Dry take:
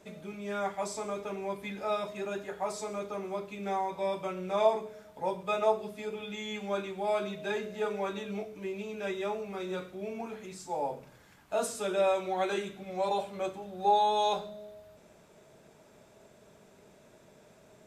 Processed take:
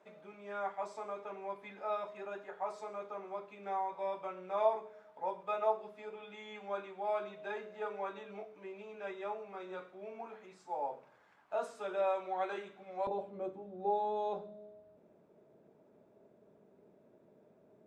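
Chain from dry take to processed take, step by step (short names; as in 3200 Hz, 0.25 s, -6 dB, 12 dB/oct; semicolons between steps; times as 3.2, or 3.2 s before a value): band-pass 970 Hz, Q 0.92, from 13.07 s 330 Hz; gain -3 dB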